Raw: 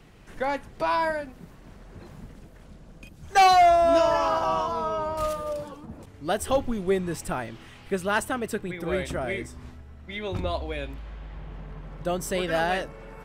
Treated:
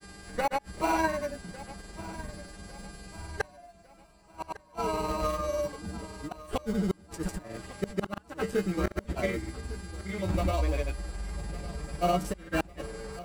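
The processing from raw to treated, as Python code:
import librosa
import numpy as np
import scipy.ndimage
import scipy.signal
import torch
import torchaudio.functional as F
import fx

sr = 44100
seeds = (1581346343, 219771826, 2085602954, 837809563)

p1 = fx.wiener(x, sr, points=9)
p2 = fx.dmg_buzz(p1, sr, base_hz=400.0, harmonics=27, level_db=-50.0, tilt_db=-2, odd_only=False)
p3 = fx.sample_hold(p2, sr, seeds[0], rate_hz=1700.0, jitter_pct=0)
p4 = p2 + (p3 * librosa.db_to_amplitude(-7.5))
p5 = fx.comb_fb(p4, sr, f0_hz=64.0, decay_s=0.17, harmonics='odd', damping=0.0, mix_pct=90)
p6 = fx.gate_flip(p5, sr, shuts_db=-22.0, range_db=-40)
p7 = fx.granulator(p6, sr, seeds[1], grain_ms=100.0, per_s=20.0, spray_ms=100.0, spread_st=0)
p8 = p7 + fx.echo_feedback(p7, sr, ms=1153, feedback_pct=45, wet_db=-17.0, dry=0)
y = p8 * librosa.db_to_amplitude(7.5)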